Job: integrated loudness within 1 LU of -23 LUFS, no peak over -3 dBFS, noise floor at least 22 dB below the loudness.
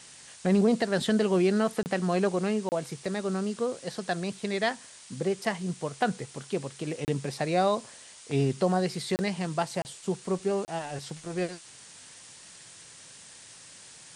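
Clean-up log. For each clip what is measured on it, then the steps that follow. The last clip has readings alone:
dropouts 6; longest dropout 29 ms; noise floor -50 dBFS; noise floor target -51 dBFS; loudness -29.0 LUFS; peak -13.0 dBFS; loudness target -23.0 LUFS
-> interpolate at 1.83/2.69/7.05/9.16/9.82/10.65, 29 ms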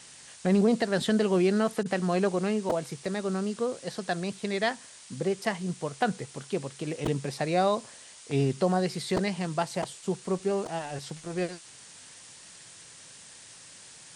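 dropouts 0; noise floor -50 dBFS; noise floor target -51 dBFS
-> noise print and reduce 6 dB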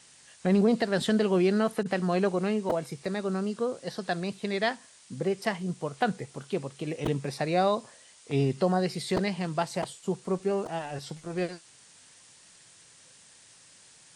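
noise floor -56 dBFS; loudness -29.0 LUFS; peak -13.0 dBFS; loudness target -23.0 LUFS
-> gain +6 dB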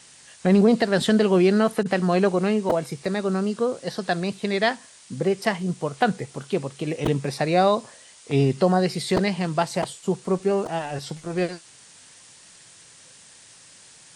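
loudness -23.0 LUFS; peak -7.0 dBFS; noise floor -50 dBFS

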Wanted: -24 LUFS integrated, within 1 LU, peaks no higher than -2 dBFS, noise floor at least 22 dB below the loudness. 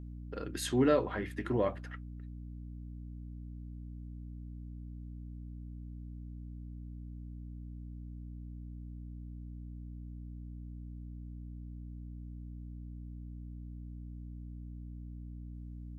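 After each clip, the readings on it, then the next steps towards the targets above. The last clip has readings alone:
hum 60 Hz; harmonics up to 300 Hz; hum level -42 dBFS; loudness -41.0 LUFS; peak -14.5 dBFS; loudness target -24.0 LUFS
-> de-hum 60 Hz, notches 5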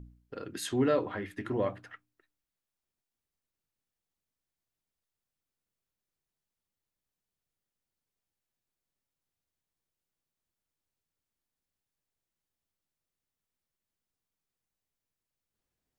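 hum none; loudness -32.0 LUFS; peak -15.5 dBFS; loudness target -24.0 LUFS
-> gain +8 dB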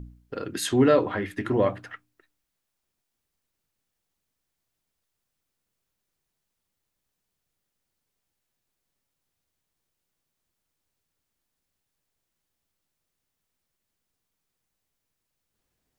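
loudness -24.0 LUFS; peak -7.5 dBFS; noise floor -82 dBFS

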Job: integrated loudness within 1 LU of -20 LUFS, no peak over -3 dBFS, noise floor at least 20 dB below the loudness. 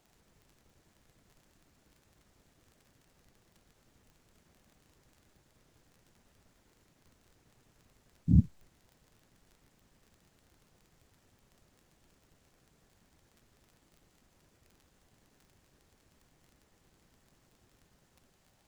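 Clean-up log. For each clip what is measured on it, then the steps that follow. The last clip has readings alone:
ticks 27/s; loudness -29.0 LUFS; peak -10.5 dBFS; loudness target -20.0 LUFS
-> de-click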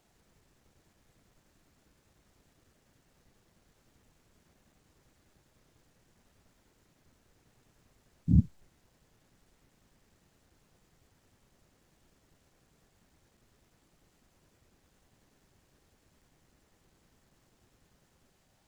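ticks 0.21/s; loudness -29.0 LUFS; peak -10.5 dBFS; loudness target -20.0 LUFS
-> gain +9 dB; limiter -3 dBFS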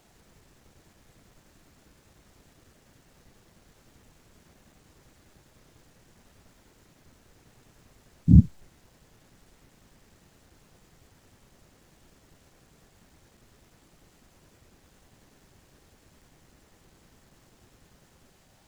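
loudness -20.5 LUFS; peak -3.0 dBFS; noise floor -62 dBFS

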